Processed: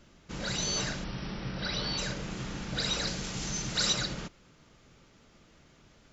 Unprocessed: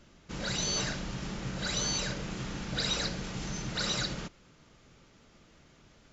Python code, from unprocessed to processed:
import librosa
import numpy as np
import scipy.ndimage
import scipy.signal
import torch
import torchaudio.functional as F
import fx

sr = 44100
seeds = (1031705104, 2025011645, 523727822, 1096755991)

y = fx.brickwall_lowpass(x, sr, high_hz=5900.0, at=(1.04, 1.98))
y = fx.high_shelf(y, sr, hz=4400.0, db=11.0, at=(3.07, 3.93))